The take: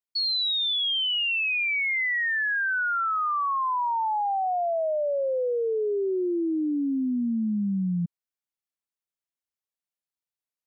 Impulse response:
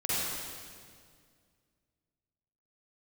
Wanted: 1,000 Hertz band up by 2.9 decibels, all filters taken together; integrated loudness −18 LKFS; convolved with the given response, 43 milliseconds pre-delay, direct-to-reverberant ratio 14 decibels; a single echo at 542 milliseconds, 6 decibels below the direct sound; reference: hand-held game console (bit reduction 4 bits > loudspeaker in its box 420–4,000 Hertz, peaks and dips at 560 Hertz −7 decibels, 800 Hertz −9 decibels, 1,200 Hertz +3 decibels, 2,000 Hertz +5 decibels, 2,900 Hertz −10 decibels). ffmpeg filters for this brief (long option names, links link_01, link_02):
-filter_complex "[0:a]equalizer=frequency=1000:width_type=o:gain=5.5,aecho=1:1:542:0.501,asplit=2[link_01][link_02];[1:a]atrim=start_sample=2205,adelay=43[link_03];[link_02][link_03]afir=irnorm=-1:irlink=0,volume=-23dB[link_04];[link_01][link_04]amix=inputs=2:normalize=0,acrusher=bits=3:mix=0:aa=0.000001,highpass=420,equalizer=frequency=560:width_type=q:width=4:gain=-7,equalizer=frequency=800:width_type=q:width=4:gain=-9,equalizer=frequency=1200:width_type=q:width=4:gain=3,equalizer=frequency=2000:width_type=q:width=4:gain=5,equalizer=frequency=2900:width_type=q:width=4:gain=-10,lowpass=frequency=4000:width=0.5412,lowpass=frequency=4000:width=1.3066,volume=4.5dB"